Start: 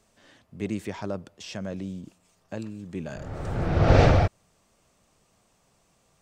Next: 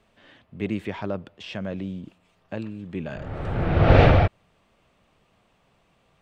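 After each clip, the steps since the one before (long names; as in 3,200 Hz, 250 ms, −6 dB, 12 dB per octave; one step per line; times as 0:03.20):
high shelf with overshoot 4,400 Hz −11.5 dB, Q 1.5
level +2.5 dB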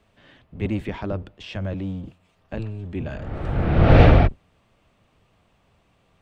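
sub-octave generator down 1 octave, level +2 dB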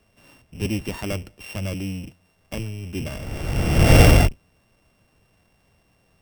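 samples sorted by size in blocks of 16 samples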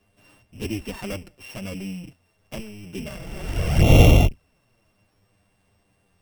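flanger swept by the level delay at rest 10.2 ms, full sweep at −11.5 dBFS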